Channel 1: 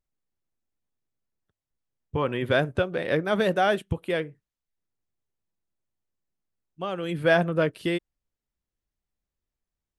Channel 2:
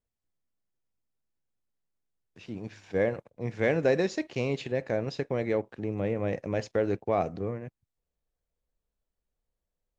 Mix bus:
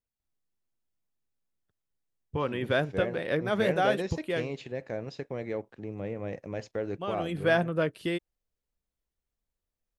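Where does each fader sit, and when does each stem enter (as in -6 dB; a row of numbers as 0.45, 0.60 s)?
-4.0, -6.0 dB; 0.20, 0.00 s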